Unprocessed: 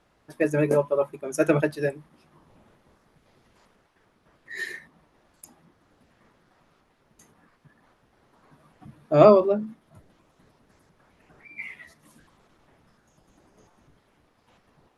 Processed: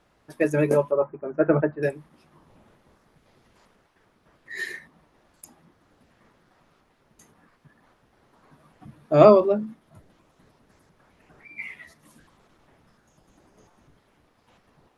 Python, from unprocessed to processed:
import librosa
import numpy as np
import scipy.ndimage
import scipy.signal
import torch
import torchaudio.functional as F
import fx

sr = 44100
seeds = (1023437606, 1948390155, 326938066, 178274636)

y = fx.lowpass(x, sr, hz=1600.0, slope=24, at=(0.91, 1.83))
y = y * librosa.db_to_amplitude(1.0)